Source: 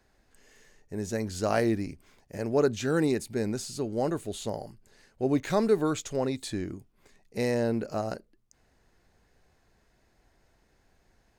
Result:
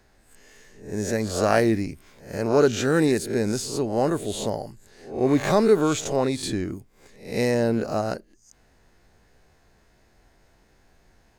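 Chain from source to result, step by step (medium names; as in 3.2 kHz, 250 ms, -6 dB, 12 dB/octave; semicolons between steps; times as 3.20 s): reverse spectral sustain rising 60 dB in 0.45 s; trim +5 dB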